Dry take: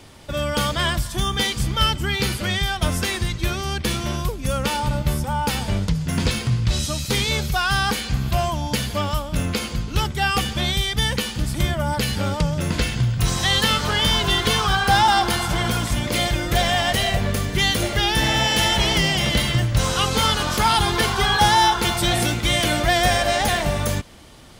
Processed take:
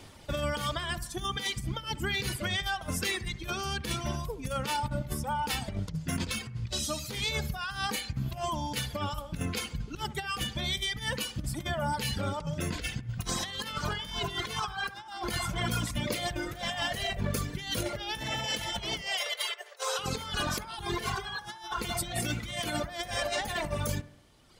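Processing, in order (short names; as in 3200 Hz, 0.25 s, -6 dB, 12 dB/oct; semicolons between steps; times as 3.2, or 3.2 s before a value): reverb removal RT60 1.7 s; negative-ratio compressor -25 dBFS, ratio -0.5; 19.01–19.99 brick-wall FIR high-pass 380 Hz; analogue delay 68 ms, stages 1024, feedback 51%, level -16 dB; gain -7.5 dB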